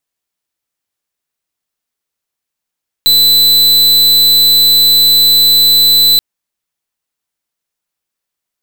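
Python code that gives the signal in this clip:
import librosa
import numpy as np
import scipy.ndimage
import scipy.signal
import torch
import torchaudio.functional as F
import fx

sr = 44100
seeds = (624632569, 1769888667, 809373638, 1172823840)

y = fx.pulse(sr, length_s=3.13, hz=4000.0, level_db=-7.5, duty_pct=44)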